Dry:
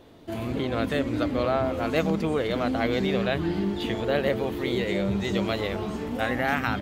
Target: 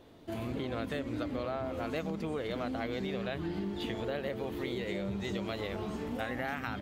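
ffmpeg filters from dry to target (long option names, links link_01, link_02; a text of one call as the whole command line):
ffmpeg -i in.wav -af "acompressor=threshold=-27dB:ratio=6,volume=-5dB" out.wav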